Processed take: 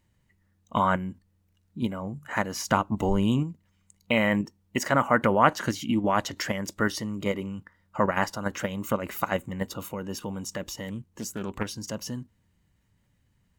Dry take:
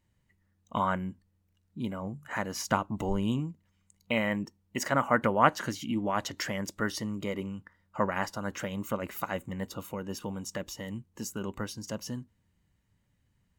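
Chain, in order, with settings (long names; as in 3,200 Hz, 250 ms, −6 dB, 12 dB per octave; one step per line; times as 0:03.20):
in parallel at +3 dB: output level in coarse steps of 16 dB
0:10.88–0:11.75: on the sum: highs frequency-modulated by the lows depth 0.42 ms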